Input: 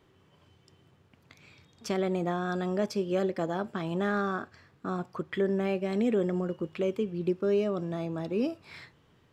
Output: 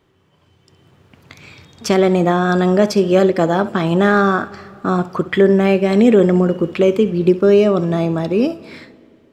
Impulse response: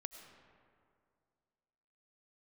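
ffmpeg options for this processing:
-filter_complex "[0:a]dynaudnorm=f=110:g=17:m=12.5dB,asplit=2[a][b];[1:a]atrim=start_sample=2205,adelay=66[c];[b][c]afir=irnorm=-1:irlink=0,volume=-11.5dB[d];[a][d]amix=inputs=2:normalize=0,volume=3.5dB"

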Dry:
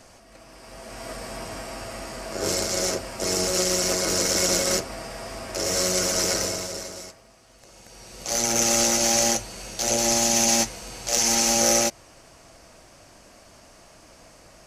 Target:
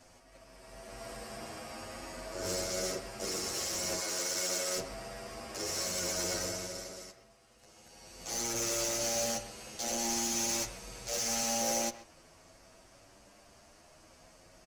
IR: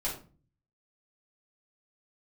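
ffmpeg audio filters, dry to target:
-filter_complex "[0:a]asettb=1/sr,asplit=3[a][b][c];[a]atrim=end=3.994[d];[b]atrim=start=3.99:end=4.77,asetpts=PTS-STARTPTS,afade=t=in:d=0.004:c=qsin,afade=t=out:st=0.776:d=0.004:c=qsin,highpass=f=590:p=1[e];[c]atrim=start=4.766[f];[d][e]acrossfade=d=0.004:c1=hsin:c2=qsin[g];[g][f]acrossfade=d=0.004:c1=qsin:c2=hsin,asoftclip=type=tanh:threshold=-19.5dB,asplit=2[h][i];[i]adelay=130,highpass=300,lowpass=3.4k,asoftclip=type=hard:threshold=-27.5dB,volume=-11dB[j];[h][j]amix=inputs=2:normalize=0,asplit=2[k][l];[l]adelay=9.2,afreqshift=0.49[m];[k][m]amix=inputs=2:normalize=1,volume=-5.5dB"

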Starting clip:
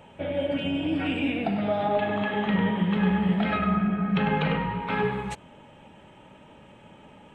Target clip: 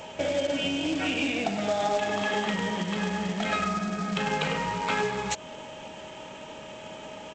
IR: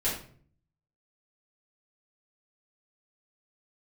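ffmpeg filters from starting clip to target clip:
-af "acompressor=threshold=-35dB:ratio=3,bass=f=250:g=-8,treble=f=4k:g=14,aresample=16000,acrusher=bits=3:mode=log:mix=0:aa=0.000001,aresample=44100,aeval=exprs='val(0)+0.00224*sin(2*PI*630*n/s)':c=same,volume=8.5dB"

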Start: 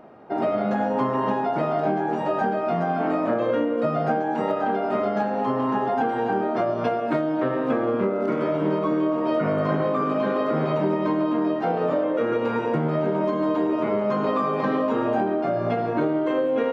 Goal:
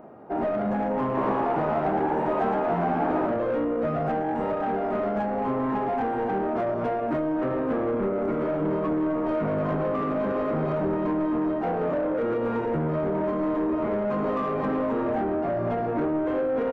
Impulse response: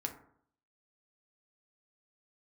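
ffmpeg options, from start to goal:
-filter_complex "[0:a]asoftclip=type=tanh:threshold=-23dB,equalizer=f=4.4k:w=0.59:g=-13.5,asplit=3[a][b][c];[a]afade=t=out:st=1.16:d=0.02[d];[b]asplit=8[e][f][g][h][i][j][k][l];[f]adelay=114,afreqshift=72,volume=-4dB[m];[g]adelay=228,afreqshift=144,volume=-9.2dB[n];[h]adelay=342,afreqshift=216,volume=-14.4dB[o];[i]adelay=456,afreqshift=288,volume=-19.6dB[p];[j]adelay=570,afreqshift=360,volume=-24.8dB[q];[k]adelay=684,afreqshift=432,volume=-30dB[r];[l]adelay=798,afreqshift=504,volume=-35.2dB[s];[e][m][n][o][p][q][r][s]amix=inputs=8:normalize=0,afade=t=in:st=1.16:d=0.02,afade=t=out:st=3.26:d=0.02[t];[c]afade=t=in:st=3.26:d=0.02[u];[d][t][u]amix=inputs=3:normalize=0,volume=2dB"

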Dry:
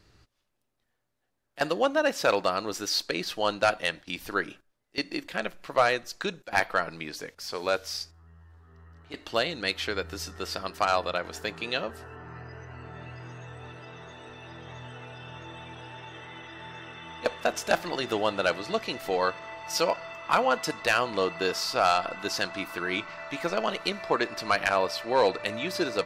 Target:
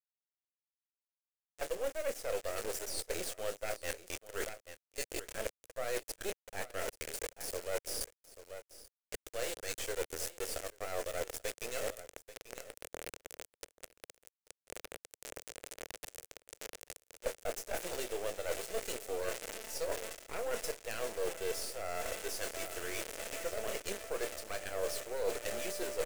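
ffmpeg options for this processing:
-filter_complex "[0:a]equalizer=f=300:t=o:w=0.24:g=-10,asplit=2[a][b];[b]adelay=27,volume=-12dB[c];[a][c]amix=inputs=2:normalize=0,acrusher=bits=3:dc=4:mix=0:aa=0.000001,aecho=1:1:837:0.0794,areverse,acompressor=threshold=-37dB:ratio=12,areverse,equalizer=f=125:t=o:w=1:g=-11,equalizer=f=250:t=o:w=1:g=-4,equalizer=f=500:t=o:w=1:g=10,equalizer=f=1k:t=o:w=1:g=-9,equalizer=f=4k:t=o:w=1:g=-6,equalizer=f=8k:t=o:w=1:g=5,volume=4dB"

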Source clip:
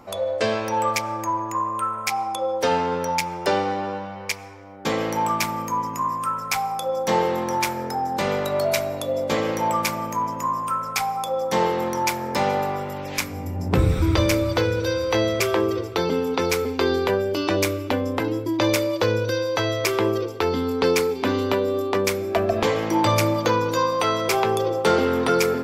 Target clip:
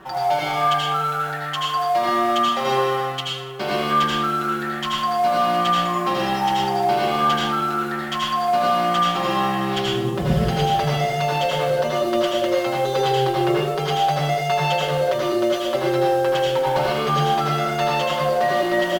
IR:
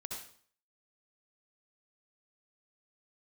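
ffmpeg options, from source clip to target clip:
-filter_complex "[0:a]lowpass=f=3.6k:w=0.5412,lowpass=f=3.6k:w=1.3066,aecho=1:1:7.2:0.96,areverse,acompressor=threshold=-21dB:ratio=6,areverse,acrusher=bits=5:mode=log:mix=0:aa=0.000001,asplit=2[a][b];[b]asoftclip=type=tanh:threshold=-25dB,volume=-4dB[c];[a][c]amix=inputs=2:normalize=0[d];[1:a]atrim=start_sample=2205,asetrate=26460,aresample=44100[e];[d][e]afir=irnorm=-1:irlink=0,asetrate=59535,aresample=44100,volume=-1dB"

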